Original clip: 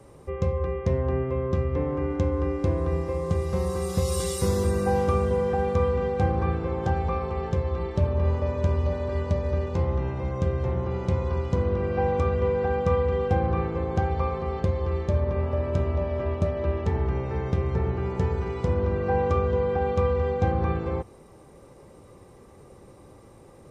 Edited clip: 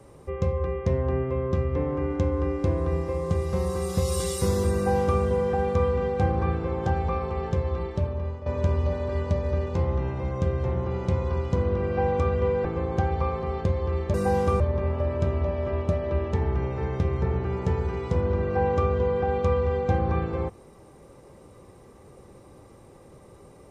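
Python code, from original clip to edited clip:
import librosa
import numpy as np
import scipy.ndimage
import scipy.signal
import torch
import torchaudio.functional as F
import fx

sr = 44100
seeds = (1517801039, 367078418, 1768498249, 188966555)

y = fx.edit(x, sr, fx.duplicate(start_s=4.75, length_s=0.46, to_s=15.13),
    fx.fade_out_to(start_s=7.74, length_s=0.72, floor_db=-13.5),
    fx.cut(start_s=12.65, length_s=0.99), tone=tone)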